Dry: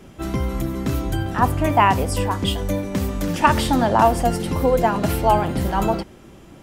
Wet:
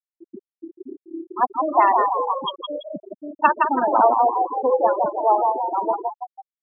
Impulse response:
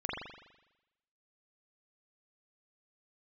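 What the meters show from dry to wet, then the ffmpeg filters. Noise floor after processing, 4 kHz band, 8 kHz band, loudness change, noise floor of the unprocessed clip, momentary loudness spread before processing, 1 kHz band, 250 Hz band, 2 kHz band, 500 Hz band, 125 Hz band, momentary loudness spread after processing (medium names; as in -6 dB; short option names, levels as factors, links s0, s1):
under -85 dBFS, -7.5 dB, under -40 dB, 0.0 dB, -45 dBFS, 8 LU, +2.0 dB, -10.0 dB, -4.0 dB, -0.5 dB, under -30 dB, 20 LU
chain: -filter_complex "[0:a]highpass=370,lowpass=4500,asplit=9[s0][s1][s2][s3][s4][s5][s6][s7][s8];[s1]adelay=165,afreqshift=36,volume=0.668[s9];[s2]adelay=330,afreqshift=72,volume=0.389[s10];[s3]adelay=495,afreqshift=108,volume=0.224[s11];[s4]adelay=660,afreqshift=144,volume=0.13[s12];[s5]adelay=825,afreqshift=180,volume=0.0759[s13];[s6]adelay=990,afreqshift=216,volume=0.0437[s14];[s7]adelay=1155,afreqshift=252,volume=0.0254[s15];[s8]adelay=1320,afreqshift=288,volume=0.0148[s16];[s0][s9][s10][s11][s12][s13][s14][s15][s16]amix=inputs=9:normalize=0,afftfilt=real='re*gte(hypot(re,im),0.282)':imag='im*gte(hypot(re,im),0.282)':win_size=1024:overlap=0.75"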